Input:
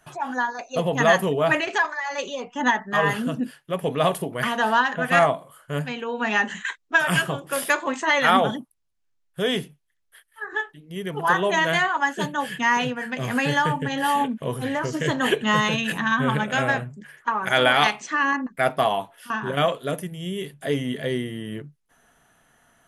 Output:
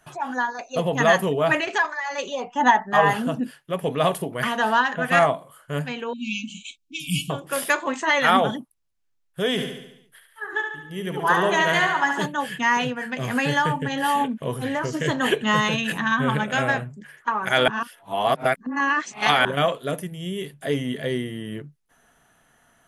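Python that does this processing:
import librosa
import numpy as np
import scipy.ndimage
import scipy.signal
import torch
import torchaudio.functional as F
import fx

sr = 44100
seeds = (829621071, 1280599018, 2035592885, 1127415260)

y = fx.peak_eq(x, sr, hz=800.0, db=9.5, octaves=0.63, at=(2.32, 3.39))
y = fx.brickwall_bandstop(y, sr, low_hz=320.0, high_hz=2200.0, at=(6.13, 7.3))
y = fx.echo_feedback(y, sr, ms=71, feedback_pct=55, wet_db=-6.0, at=(9.57, 12.25), fade=0.02)
y = fx.edit(y, sr, fx.reverse_span(start_s=17.68, length_s=1.77), tone=tone)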